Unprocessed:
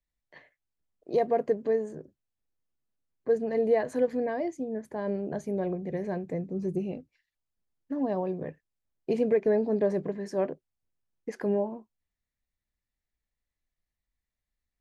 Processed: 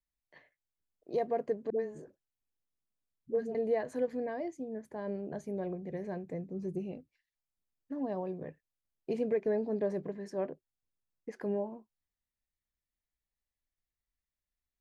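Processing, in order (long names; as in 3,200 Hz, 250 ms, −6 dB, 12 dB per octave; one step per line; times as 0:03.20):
0:01.70–0:03.55: all-pass dispersion highs, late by 92 ms, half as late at 480 Hz
0:10.30–0:11.41: high-shelf EQ 4,300 Hz −5.5 dB
level −6.5 dB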